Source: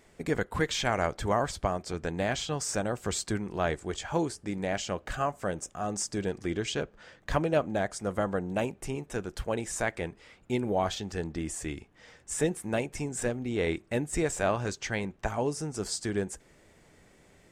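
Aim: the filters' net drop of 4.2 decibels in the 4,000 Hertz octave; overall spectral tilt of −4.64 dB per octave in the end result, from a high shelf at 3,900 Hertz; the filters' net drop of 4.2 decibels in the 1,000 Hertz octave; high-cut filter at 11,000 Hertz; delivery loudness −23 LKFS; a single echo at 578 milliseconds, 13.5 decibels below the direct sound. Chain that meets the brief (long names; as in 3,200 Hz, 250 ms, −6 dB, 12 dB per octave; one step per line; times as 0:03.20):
low-pass filter 11,000 Hz
parametric band 1,000 Hz −6 dB
high-shelf EQ 3,900 Hz +4 dB
parametric band 4,000 Hz −8 dB
single-tap delay 578 ms −13.5 dB
level +10 dB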